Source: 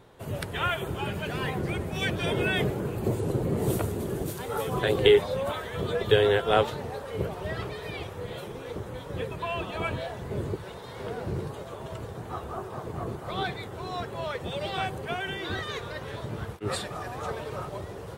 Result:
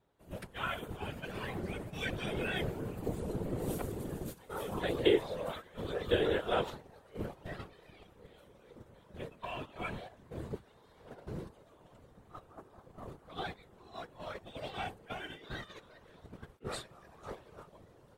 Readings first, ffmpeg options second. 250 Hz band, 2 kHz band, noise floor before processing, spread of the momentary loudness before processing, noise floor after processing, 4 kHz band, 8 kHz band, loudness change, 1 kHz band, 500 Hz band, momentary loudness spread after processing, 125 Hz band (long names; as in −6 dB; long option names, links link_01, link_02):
−7.0 dB, −9.5 dB, −41 dBFS, 14 LU, −62 dBFS, −9.5 dB, −10.0 dB, −8.0 dB, −10.0 dB, −9.5 dB, 23 LU, −11.5 dB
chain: -af "agate=range=-12dB:threshold=-32dB:ratio=16:detection=peak,afftfilt=real='hypot(re,im)*cos(2*PI*random(0))':imag='hypot(re,im)*sin(2*PI*random(1))':win_size=512:overlap=0.75,volume=-3dB"